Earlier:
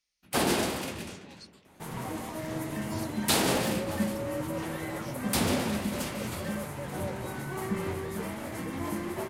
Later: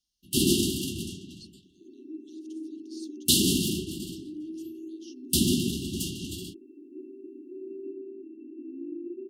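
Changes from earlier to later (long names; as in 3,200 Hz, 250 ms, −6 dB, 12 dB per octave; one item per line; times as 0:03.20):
first sound +5.5 dB
second sound: add linear-phase brick-wall band-pass 250–2,700 Hz
master: add linear-phase brick-wall band-stop 400–2,700 Hz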